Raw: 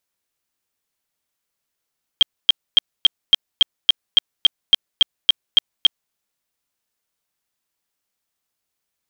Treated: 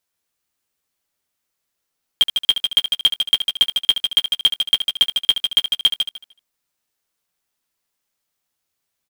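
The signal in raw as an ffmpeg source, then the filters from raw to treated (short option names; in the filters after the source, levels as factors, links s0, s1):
-f lavfi -i "aevalsrc='0.501*sin(2*PI*3210*mod(t,0.28))*lt(mod(t,0.28),50/3210)':d=3.92:s=44100"
-filter_complex "[0:a]asplit=2[s0][s1];[s1]aecho=0:1:151|302|453:0.473|0.0852|0.0153[s2];[s0][s2]amix=inputs=2:normalize=0,acrusher=bits=3:mode=log:mix=0:aa=0.000001,asplit=2[s3][s4];[s4]aecho=0:1:12|73:0.376|0.316[s5];[s3][s5]amix=inputs=2:normalize=0"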